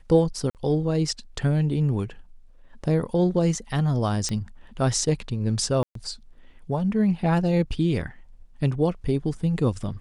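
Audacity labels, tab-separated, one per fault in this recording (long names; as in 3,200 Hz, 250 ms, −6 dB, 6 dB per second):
0.500000	0.550000	drop-out 48 ms
4.290000	4.290000	click −15 dBFS
5.830000	5.950000	drop-out 123 ms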